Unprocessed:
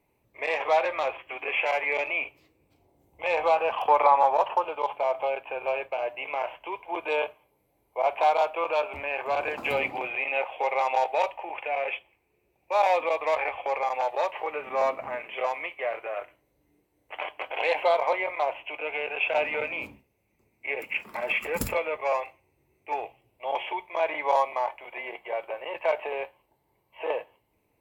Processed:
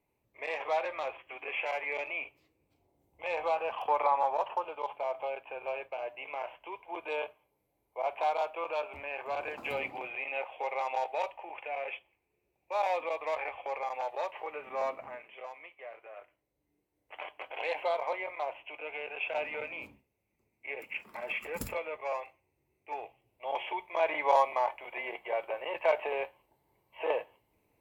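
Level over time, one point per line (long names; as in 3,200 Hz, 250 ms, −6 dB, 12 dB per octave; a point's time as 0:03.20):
0:14.98 −8 dB
0:15.42 −16 dB
0:15.98 −16 dB
0:17.14 −8.5 dB
0:22.92 −8.5 dB
0:24.18 −1.5 dB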